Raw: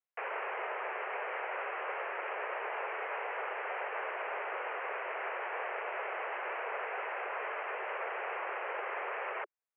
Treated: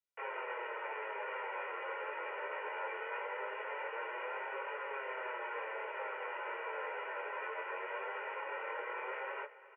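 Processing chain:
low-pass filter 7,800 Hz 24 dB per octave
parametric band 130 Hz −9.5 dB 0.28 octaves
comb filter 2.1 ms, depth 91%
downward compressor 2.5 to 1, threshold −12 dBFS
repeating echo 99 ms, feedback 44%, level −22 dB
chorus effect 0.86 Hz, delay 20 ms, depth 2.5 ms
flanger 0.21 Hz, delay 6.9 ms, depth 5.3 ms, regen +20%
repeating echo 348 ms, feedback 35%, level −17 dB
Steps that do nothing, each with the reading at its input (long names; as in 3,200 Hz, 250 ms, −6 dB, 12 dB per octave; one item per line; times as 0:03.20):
low-pass filter 7,800 Hz: nothing at its input above 3,200 Hz
parametric band 130 Hz: nothing at its input below 300 Hz
downward compressor, threshold −12 dBFS: peak of its input −22.0 dBFS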